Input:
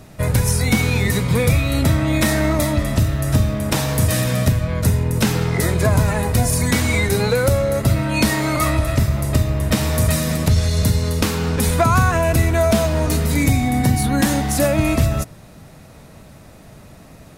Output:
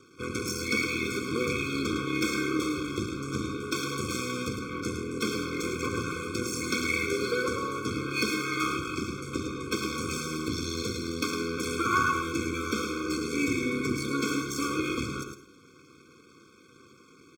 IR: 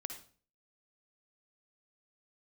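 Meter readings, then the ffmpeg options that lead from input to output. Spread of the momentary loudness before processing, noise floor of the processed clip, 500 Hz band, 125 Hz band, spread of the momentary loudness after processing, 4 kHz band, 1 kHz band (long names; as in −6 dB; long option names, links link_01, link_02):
3 LU, −56 dBFS, −11.5 dB, −21.5 dB, 6 LU, −8.0 dB, −9.0 dB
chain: -filter_complex "[0:a]lowpass=frequency=6800:width=0.5412,lowpass=frequency=6800:width=1.3066,aeval=exprs='max(val(0),0)':channel_layout=same,highpass=220,equalizer=frequency=440:width=5.4:gain=-4.5,bandreject=frequency=60:width_type=h:width=6,bandreject=frequency=120:width_type=h:width=6,bandreject=frequency=180:width_type=h:width=6,bandreject=frequency=240:width_type=h:width=6,bandreject=frequency=300:width_type=h:width=6,bandreject=frequency=360:width_type=h:width=6,bandreject=frequency=420:width_type=h:width=6,aecho=1:1:2.7:0.52,aecho=1:1:108:0.422,asplit=2[link_01][link_02];[1:a]atrim=start_sample=2205,highshelf=frequency=9400:gain=11.5[link_03];[link_02][link_03]afir=irnorm=-1:irlink=0,volume=0.5dB[link_04];[link_01][link_04]amix=inputs=2:normalize=0,afftfilt=real='re*eq(mod(floor(b*sr/1024/520),2),0)':imag='im*eq(mod(floor(b*sr/1024/520),2),0)':win_size=1024:overlap=0.75,volume=-8dB"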